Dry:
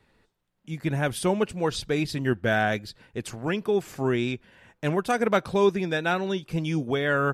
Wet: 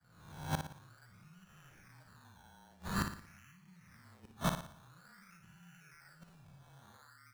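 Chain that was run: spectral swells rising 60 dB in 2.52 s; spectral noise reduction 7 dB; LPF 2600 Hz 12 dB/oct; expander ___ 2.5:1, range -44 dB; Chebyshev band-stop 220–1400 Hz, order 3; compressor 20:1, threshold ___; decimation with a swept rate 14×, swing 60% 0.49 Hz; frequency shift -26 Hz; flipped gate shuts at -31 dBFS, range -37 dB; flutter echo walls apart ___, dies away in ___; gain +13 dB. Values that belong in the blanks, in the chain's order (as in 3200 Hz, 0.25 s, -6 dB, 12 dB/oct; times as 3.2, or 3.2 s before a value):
-25 dBFS, -33 dBFS, 9.9 m, 0.49 s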